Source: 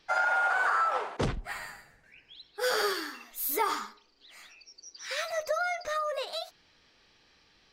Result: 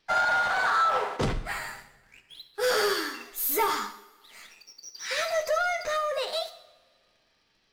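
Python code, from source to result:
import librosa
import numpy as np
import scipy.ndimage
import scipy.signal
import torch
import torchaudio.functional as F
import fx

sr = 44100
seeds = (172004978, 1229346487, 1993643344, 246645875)

y = fx.leveller(x, sr, passes=2)
y = fx.rev_double_slope(y, sr, seeds[0], early_s=0.58, late_s=1.9, knee_db=-18, drr_db=7.0)
y = y * 10.0 ** (-3.0 / 20.0)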